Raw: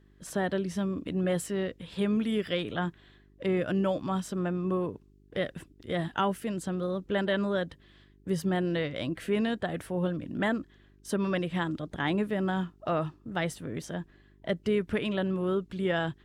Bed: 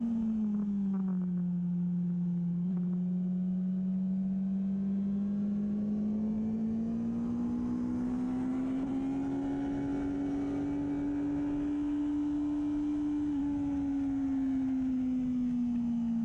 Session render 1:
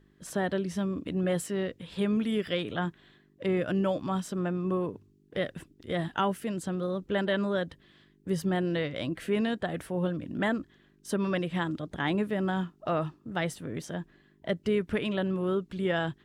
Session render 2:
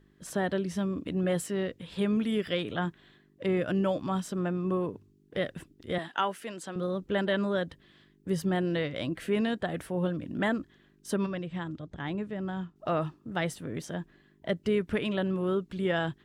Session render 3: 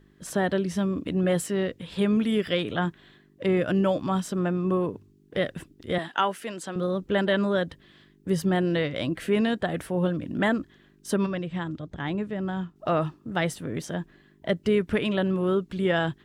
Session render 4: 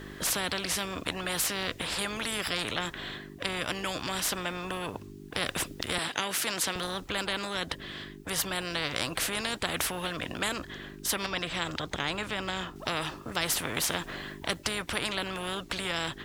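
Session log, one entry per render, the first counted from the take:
de-hum 50 Hz, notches 2
5.98–6.76 weighting filter A; 11.26–12.76 EQ curve 110 Hz 0 dB, 230 Hz -6 dB, 7500 Hz -9 dB, 11000 Hz -22 dB
gain +4.5 dB
vocal rider within 5 dB 0.5 s; spectral compressor 4:1

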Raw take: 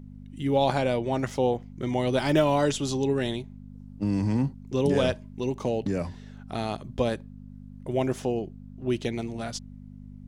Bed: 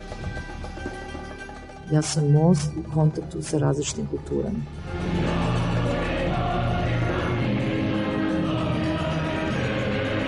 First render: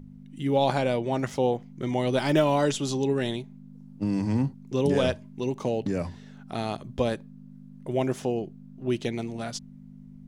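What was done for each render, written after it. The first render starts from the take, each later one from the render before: de-hum 50 Hz, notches 2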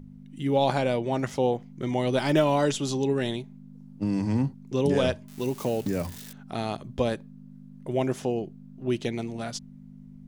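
5.28–6.33 switching spikes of -31.5 dBFS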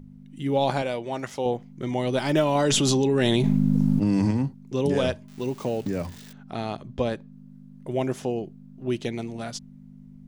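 0.82–1.46 low shelf 370 Hz -8.5 dB; 2.55–4.31 fast leveller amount 100%; 5.27–7.32 bell 14000 Hz -12 dB 1.1 oct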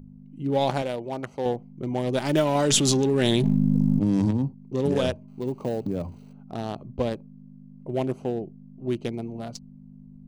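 Wiener smoothing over 25 samples; high shelf 5200 Hz +6 dB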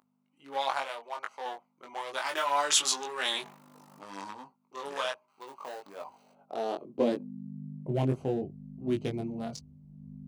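high-pass sweep 1100 Hz -> 74 Hz, 5.88–8.24; chorus 0.67 Hz, delay 19.5 ms, depth 2.9 ms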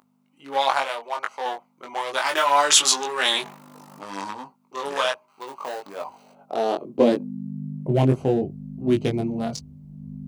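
gain +9.5 dB; limiter -3 dBFS, peak gain reduction 1 dB

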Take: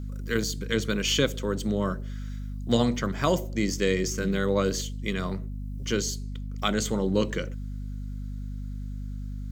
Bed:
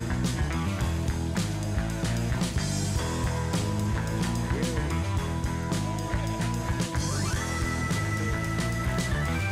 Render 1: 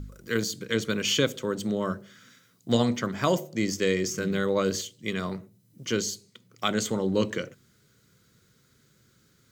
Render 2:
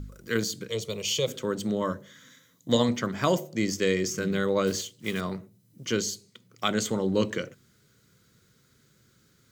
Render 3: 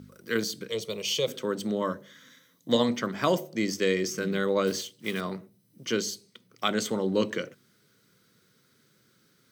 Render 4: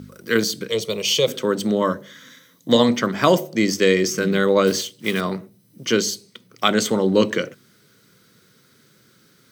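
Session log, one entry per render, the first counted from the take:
de-hum 50 Hz, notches 5
0.69–1.28 fixed phaser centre 640 Hz, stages 4; 1.81–2.89 ripple EQ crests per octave 1.1, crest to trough 8 dB; 4.67–5.22 block floating point 5-bit
HPF 170 Hz 12 dB/oct; notch 7000 Hz, Q 6
gain +9 dB; limiter -2 dBFS, peak gain reduction 2 dB

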